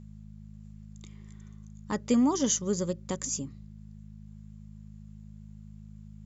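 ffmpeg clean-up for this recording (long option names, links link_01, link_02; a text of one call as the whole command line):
ffmpeg -i in.wav -af "bandreject=frequency=52.4:width_type=h:width=4,bandreject=frequency=104.8:width_type=h:width=4,bandreject=frequency=157.2:width_type=h:width=4,bandreject=frequency=209.6:width_type=h:width=4" out.wav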